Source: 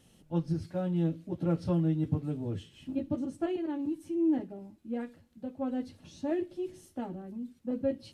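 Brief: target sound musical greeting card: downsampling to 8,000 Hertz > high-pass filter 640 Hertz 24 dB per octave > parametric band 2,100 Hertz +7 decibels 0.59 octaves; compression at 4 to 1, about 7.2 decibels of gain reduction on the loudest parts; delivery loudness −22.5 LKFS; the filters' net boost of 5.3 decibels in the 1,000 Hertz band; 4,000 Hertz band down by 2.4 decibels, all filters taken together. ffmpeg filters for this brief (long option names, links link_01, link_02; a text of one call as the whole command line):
ffmpeg -i in.wav -af "equalizer=frequency=1000:width_type=o:gain=8,equalizer=frequency=4000:width_type=o:gain=-6,acompressor=threshold=-31dB:ratio=4,aresample=8000,aresample=44100,highpass=frequency=640:width=0.5412,highpass=frequency=640:width=1.3066,equalizer=frequency=2100:width_type=o:width=0.59:gain=7,volume=25.5dB" out.wav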